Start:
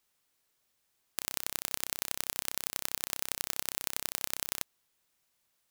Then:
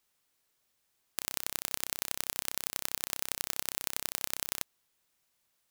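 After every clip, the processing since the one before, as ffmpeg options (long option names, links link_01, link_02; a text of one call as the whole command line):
ffmpeg -i in.wav -af anull out.wav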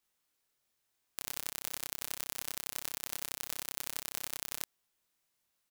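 ffmpeg -i in.wav -filter_complex "[0:a]asplit=2[link_01][link_02];[link_02]adelay=24,volume=-2.5dB[link_03];[link_01][link_03]amix=inputs=2:normalize=0,volume=-6dB" out.wav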